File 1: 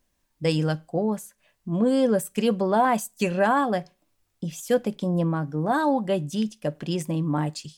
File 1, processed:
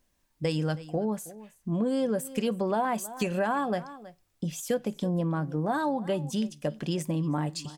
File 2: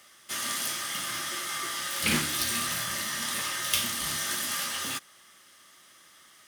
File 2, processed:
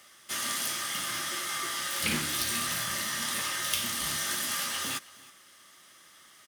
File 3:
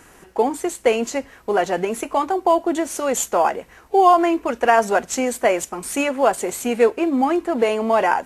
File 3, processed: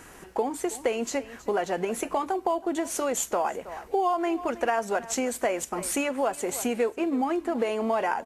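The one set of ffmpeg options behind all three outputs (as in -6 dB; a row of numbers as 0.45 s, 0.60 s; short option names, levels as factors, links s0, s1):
-af "aecho=1:1:320:0.0841,acompressor=threshold=0.0501:ratio=3"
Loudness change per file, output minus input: -5.0 LU, -1.0 LU, -8.5 LU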